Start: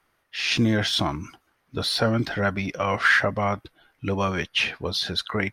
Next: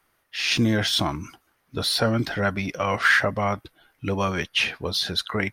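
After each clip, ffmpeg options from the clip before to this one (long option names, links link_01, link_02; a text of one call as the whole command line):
ffmpeg -i in.wav -af "highshelf=frequency=9000:gain=9.5" out.wav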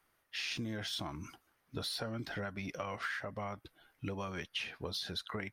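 ffmpeg -i in.wav -af "acompressor=threshold=-29dB:ratio=10,volume=-7dB" out.wav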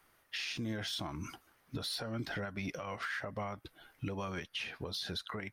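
ffmpeg -i in.wav -af "alimiter=level_in=11dB:limit=-24dB:level=0:latency=1:release=312,volume=-11dB,volume=6.5dB" out.wav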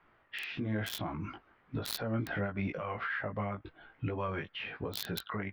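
ffmpeg -i in.wav -filter_complex "[0:a]flanger=delay=17.5:depth=2.9:speed=0.99,acrossover=split=2900[link_01][link_02];[link_02]acrusher=bits=5:mix=0:aa=0.000001[link_03];[link_01][link_03]amix=inputs=2:normalize=0,volume=7dB" out.wav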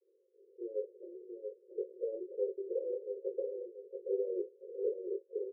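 ffmpeg -i in.wav -filter_complex "[0:a]asuperpass=centerf=440:order=20:qfactor=2.3,asplit=2[link_01][link_02];[link_02]aecho=0:1:681|1362|2043|2724:0.501|0.165|0.0546|0.018[link_03];[link_01][link_03]amix=inputs=2:normalize=0,volume=7dB" out.wav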